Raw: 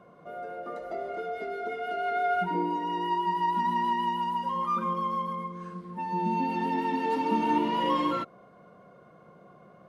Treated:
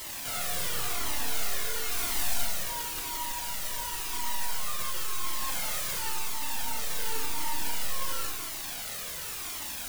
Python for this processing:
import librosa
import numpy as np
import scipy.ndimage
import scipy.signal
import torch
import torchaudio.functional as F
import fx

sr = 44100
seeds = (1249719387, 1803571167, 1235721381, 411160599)

y = fx.tilt_eq(x, sr, slope=3.5)
y = fx.hum_notches(y, sr, base_hz=50, count=4)
y = fx.fuzz(y, sr, gain_db=44.0, gate_db=-52.0)
y = fx.quant_dither(y, sr, seeds[0], bits=6, dither='triangular')
y = (np.mod(10.0 ** (25.0 / 20.0) * y + 1.0, 2.0) - 1.0) / 10.0 ** (25.0 / 20.0)
y = fx.rev_schroeder(y, sr, rt60_s=1.5, comb_ms=26, drr_db=0.5)
y = fx.comb_cascade(y, sr, direction='falling', hz=0.94)